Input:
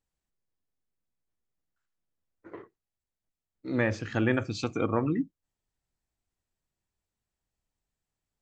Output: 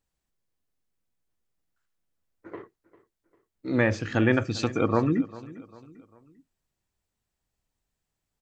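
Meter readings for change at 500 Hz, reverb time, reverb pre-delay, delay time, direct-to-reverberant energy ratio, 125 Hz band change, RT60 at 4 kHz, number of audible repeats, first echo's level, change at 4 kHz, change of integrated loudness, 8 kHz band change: +4.0 dB, no reverb audible, no reverb audible, 398 ms, no reverb audible, +4.0 dB, no reverb audible, 3, −19.0 dB, +4.0 dB, +4.0 dB, can't be measured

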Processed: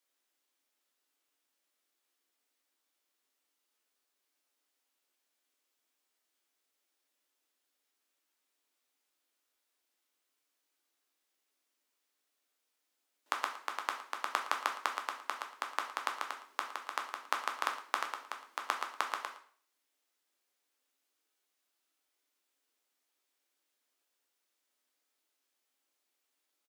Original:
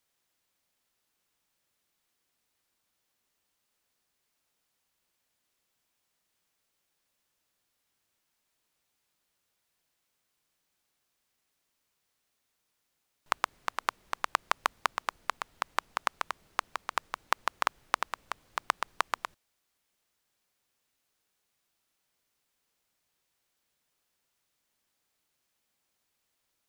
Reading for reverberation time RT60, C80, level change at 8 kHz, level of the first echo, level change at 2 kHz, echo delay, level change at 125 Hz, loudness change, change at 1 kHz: 0.50 s, 12.0 dB, −3.5 dB, −17.0 dB, −3.5 dB, 113 ms, can't be measured, −3.5 dB, −4.0 dB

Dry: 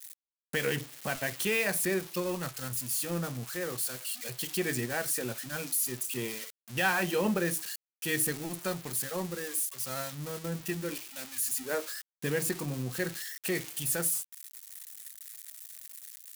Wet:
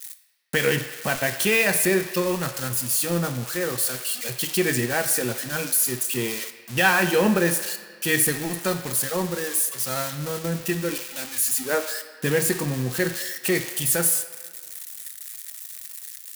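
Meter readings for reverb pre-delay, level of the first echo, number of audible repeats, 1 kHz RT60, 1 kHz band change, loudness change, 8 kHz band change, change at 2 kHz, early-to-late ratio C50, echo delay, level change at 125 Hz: 6 ms, no echo audible, no echo audible, 1.7 s, +9.0 dB, +9.0 dB, +9.0 dB, +9.0 dB, 10.5 dB, no echo audible, +8.5 dB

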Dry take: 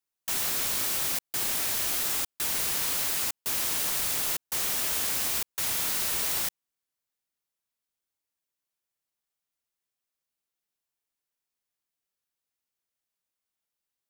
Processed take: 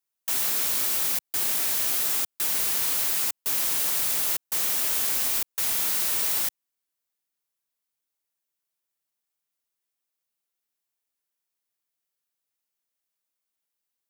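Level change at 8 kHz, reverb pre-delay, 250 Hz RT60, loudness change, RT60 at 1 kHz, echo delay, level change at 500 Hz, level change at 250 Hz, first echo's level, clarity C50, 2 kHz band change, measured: +2.0 dB, no reverb audible, no reverb audible, +3.5 dB, no reverb audible, no echo audible, −0.5 dB, −1.0 dB, no echo audible, no reverb audible, 0.0 dB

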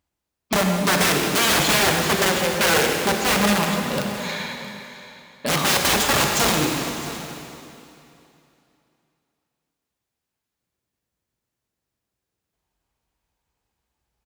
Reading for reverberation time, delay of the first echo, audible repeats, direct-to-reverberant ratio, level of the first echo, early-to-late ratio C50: 2.9 s, 665 ms, 1, 1.5 dB, −16.5 dB, 1.5 dB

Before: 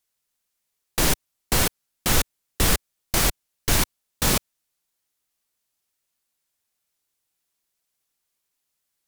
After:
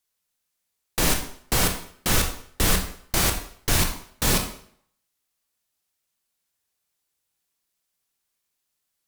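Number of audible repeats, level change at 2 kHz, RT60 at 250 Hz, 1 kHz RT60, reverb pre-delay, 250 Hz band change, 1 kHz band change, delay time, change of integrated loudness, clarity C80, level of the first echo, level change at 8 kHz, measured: no echo audible, 0.0 dB, 0.55 s, 0.60 s, 22 ms, 0.0 dB, 0.0 dB, no echo audible, 0.0 dB, 11.5 dB, no echo audible, −0.5 dB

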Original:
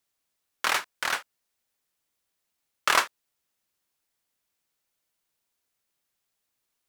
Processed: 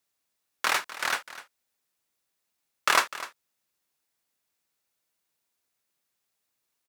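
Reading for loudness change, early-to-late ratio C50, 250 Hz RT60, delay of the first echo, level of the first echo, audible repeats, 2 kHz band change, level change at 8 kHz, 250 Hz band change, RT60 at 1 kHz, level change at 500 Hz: 0.0 dB, no reverb audible, no reverb audible, 251 ms, −15.5 dB, 1, 0.0 dB, 0.0 dB, 0.0 dB, no reverb audible, 0.0 dB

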